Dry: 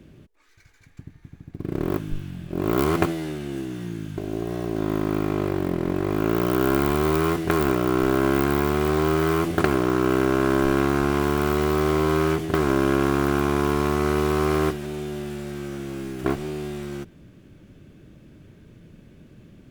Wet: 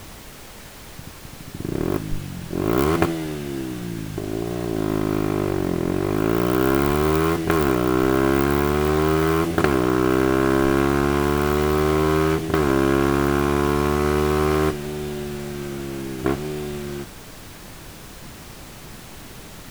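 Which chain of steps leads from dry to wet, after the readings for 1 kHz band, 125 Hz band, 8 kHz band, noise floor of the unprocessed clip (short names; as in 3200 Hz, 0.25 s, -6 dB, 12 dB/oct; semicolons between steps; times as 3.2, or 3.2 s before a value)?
+2.0 dB, +2.0 dB, +4.0 dB, -52 dBFS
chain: added noise pink -42 dBFS; gain +2 dB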